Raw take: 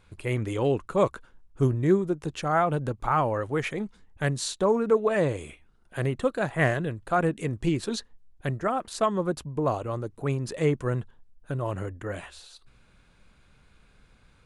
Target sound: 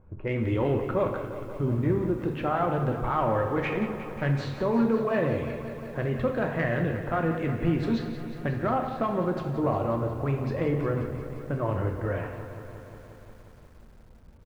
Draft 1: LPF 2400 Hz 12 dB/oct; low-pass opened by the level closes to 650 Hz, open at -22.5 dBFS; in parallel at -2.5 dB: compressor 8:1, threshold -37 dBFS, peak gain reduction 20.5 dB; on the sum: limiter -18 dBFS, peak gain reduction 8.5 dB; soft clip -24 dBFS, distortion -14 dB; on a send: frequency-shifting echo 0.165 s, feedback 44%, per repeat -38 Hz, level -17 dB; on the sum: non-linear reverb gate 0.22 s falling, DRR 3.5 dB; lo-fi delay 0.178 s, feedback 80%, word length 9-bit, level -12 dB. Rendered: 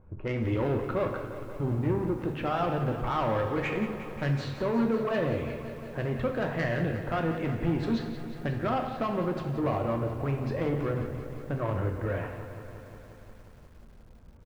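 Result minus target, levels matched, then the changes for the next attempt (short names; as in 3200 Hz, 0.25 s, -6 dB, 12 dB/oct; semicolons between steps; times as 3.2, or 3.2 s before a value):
soft clip: distortion +13 dB
change: soft clip -15.5 dBFS, distortion -27 dB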